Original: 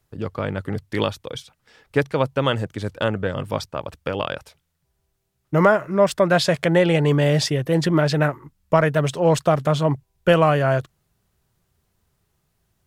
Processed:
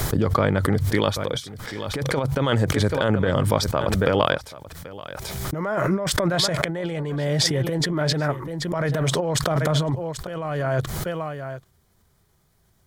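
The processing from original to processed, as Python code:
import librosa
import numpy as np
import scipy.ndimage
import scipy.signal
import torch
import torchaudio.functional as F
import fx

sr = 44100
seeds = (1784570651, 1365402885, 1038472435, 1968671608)

p1 = x + fx.echo_single(x, sr, ms=784, db=-18.5, dry=0)
p2 = fx.over_compress(p1, sr, threshold_db=-23.0, ratio=-0.5)
p3 = fx.notch(p2, sr, hz=2700.0, q=6.7)
y = fx.pre_swell(p3, sr, db_per_s=23.0)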